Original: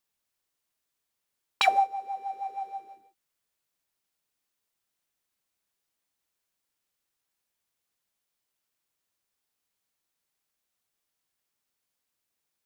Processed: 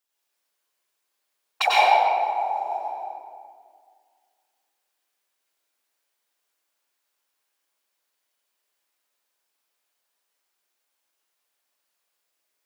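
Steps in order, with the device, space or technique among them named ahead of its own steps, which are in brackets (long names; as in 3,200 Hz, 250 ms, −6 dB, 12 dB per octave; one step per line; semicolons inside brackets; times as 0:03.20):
whispering ghost (random phases in short frames; high-pass filter 410 Hz 12 dB per octave; convolution reverb RT60 2.0 s, pre-delay 88 ms, DRR −7 dB)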